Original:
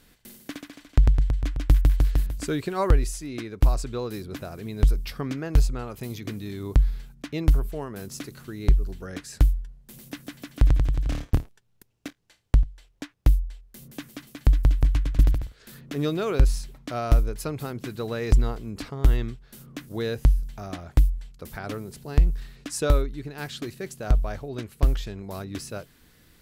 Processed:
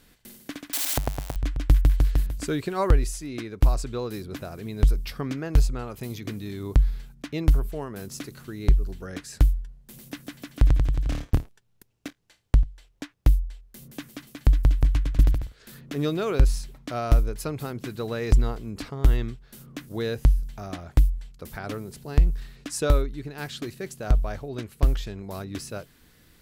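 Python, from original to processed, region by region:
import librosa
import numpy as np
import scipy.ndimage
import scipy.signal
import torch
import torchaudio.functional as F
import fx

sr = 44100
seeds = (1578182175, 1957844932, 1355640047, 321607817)

y = fx.chain(x, sr, fx.crossing_spikes(level_db=-18.5),
    fx.highpass(hz=220.0, slope=6),
    fx.peak_eq(hz=720.0, db=10.0, octaves=1.0), at=(0.73, 1.36))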